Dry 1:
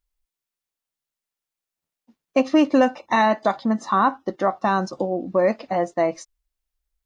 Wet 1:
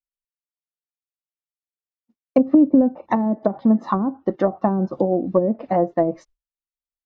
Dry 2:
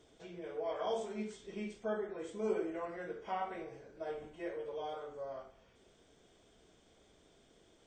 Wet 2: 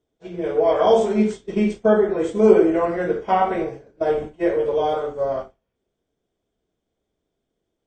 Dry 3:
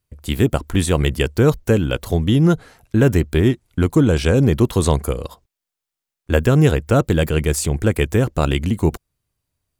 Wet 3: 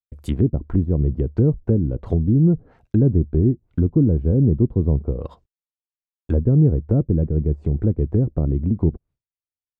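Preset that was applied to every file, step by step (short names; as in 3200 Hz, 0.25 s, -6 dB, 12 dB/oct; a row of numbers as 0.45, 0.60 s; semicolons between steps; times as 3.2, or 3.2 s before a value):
expander -43 dBFS; treble ducked by the level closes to 340 Hz, closed at -15 dBFS; tilt shelf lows +4 dB, about 880 Hz; match loudness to -20 LUFS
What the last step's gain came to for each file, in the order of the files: +2.5, +19.0, -4.0 dB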